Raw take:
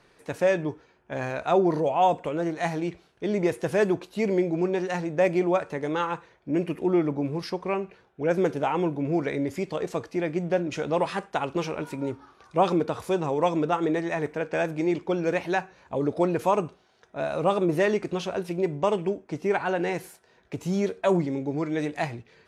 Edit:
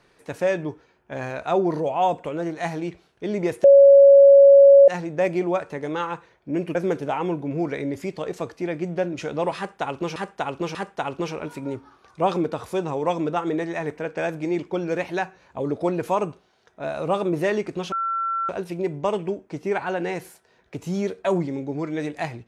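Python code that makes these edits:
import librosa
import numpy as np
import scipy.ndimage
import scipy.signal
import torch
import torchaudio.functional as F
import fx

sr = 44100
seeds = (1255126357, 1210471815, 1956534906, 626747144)

y = fx.edit(x, sr, fx.bleep(start_s=3.64, length_s=1.24, hz=557.0, db=-7.0),
    fx.cut(start_s=6.75, length_s=1.54),
    fx.repeat(start_s=11.11, length_s=0.59, count=3),
    fx.insert_tone(at_s=18.28, length_s=0.57, hz=1350.0, db=-22.0), tone=tone)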